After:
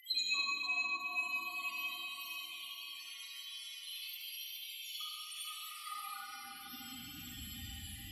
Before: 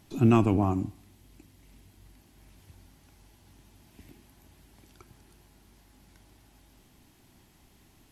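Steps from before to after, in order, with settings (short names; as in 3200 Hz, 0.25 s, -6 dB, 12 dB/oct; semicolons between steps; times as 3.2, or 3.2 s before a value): repeated pitch sweeps -1.5 st, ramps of 1.313 s; tilt shelf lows -9.5 dB, about 870 Hz; loudest bins only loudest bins 4; on a send: diffused feedback echo 0.466 s, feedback 42%, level -4 dB; on the sum: compressor 6:1, threshold -41 dBFS, peak gain reduction 13.5 dB; high-pass sweep 3300 Hz -> 71 Hz, 5.31–7.4; digital reverb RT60 2.6 s, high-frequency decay 0.85×, pre-delay 5 ms, DRR -8 dB; gain +17.5 dB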